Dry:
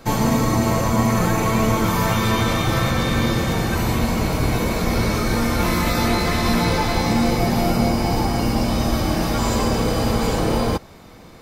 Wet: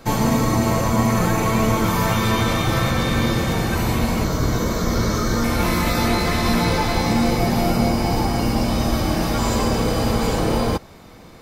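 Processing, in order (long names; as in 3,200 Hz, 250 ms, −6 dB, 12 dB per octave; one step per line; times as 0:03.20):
0:04.24–0:05.44: thirty-one-band graphic EQ 800 Hz −6 dB, 1,250 Hz +3 dB, 2,500 Hz −12 dB, 6,300 Hz +6 dB, 10,000 Hz −12 dB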